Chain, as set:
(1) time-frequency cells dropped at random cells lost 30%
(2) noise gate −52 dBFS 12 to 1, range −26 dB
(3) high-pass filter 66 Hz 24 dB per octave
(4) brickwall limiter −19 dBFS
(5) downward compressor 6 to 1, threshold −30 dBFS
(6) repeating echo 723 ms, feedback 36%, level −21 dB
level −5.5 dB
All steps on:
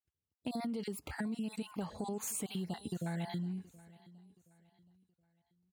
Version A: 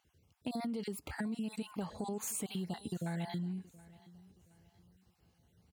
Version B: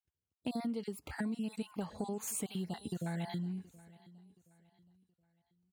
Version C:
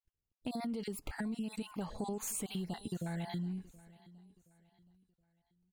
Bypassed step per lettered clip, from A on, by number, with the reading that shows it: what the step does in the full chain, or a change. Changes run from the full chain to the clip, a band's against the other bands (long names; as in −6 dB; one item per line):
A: 2, change in momentary loudness spread +8 LU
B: 4, average gain reduction 2.0 dB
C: 3, change in momentary loudness spread +9 LU